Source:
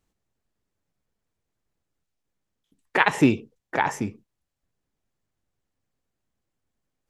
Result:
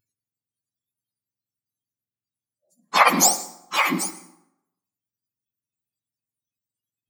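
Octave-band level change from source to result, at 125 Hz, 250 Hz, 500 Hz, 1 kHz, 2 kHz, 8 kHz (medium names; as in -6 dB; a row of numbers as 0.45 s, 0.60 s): -7.0 dB, -5.0 dB, -1.0 dB, +5.5 dB, +1.5 dB, +21.0 dB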